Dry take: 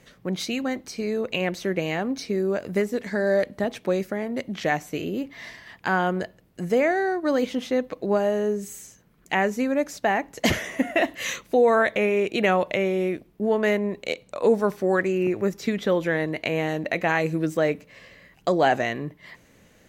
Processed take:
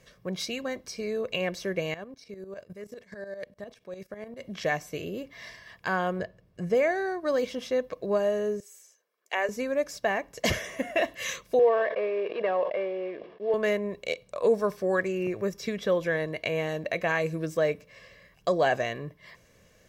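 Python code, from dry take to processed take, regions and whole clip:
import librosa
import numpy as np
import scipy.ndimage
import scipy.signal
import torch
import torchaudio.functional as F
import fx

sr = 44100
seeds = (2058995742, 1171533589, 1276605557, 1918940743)

y = fx.chain(x, sr, fx.level_steps(step_db=16),
    fx.tremolo_shape(shape='saw_up', hz=10.0, depth_pct=75), at=(1.94, 4.41))
y = fx.chain(y, sr, fx.lowpass(hz=3300.0, slope=6),
    fx.peak_eq(hz=120.0, db=4.0, octaves=2.3), at=(6.19, 6.75))
y = fx.chain(y, sr, fx.highpass(hz=400.0, slope=24),
    fx.upward_expand(threshold_db=-38.0, expansion=1.5), at=(8.6, 9.49))
y = fx.chain(y, sr, fx.cvsd(bps=32000),
    fx.cabinet(low_hz=450.0, low_slope=12, high_hz=2600.0, hz=(450.0, 1400.0, 2300.0), db=(4, -10, -7)),
    fx.sustainer(db_per_s=75.0), at=(11.59, 13.54))
y = fx.peak_eq(y, sr, hz=5300.0, db=7.0, octaves=0.2)
y = y + 0.48 * np.pad(y, (int(1.8 * sr / 1000.0), 0))[:len(y)]
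y = y * librosa.db_to_amplitude(-5.0)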